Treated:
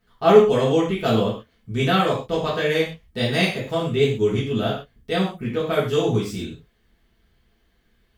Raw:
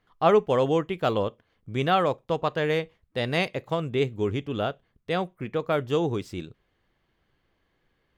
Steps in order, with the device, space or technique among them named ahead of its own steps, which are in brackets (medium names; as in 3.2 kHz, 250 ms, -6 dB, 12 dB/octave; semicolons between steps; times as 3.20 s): smiley-face EQ (bass shelf 160 Hz +5.5 dB; peaking EQ 890 Hz -6 dB 2.5 oct; treble shelf 5.8 kHz +6 dB); gated-style reverb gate 160 ms falling, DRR -8 dB; trim -1 dB